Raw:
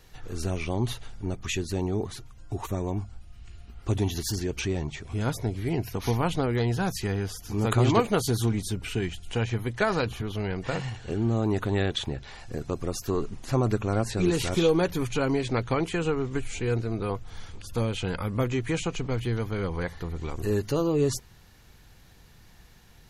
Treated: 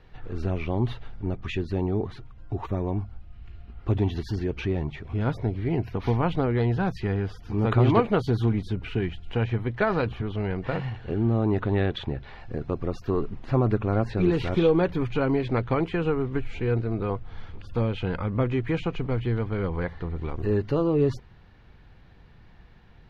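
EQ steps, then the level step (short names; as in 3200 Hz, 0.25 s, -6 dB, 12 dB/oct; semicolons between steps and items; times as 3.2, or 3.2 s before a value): air absorption 350 m; +2.5 dB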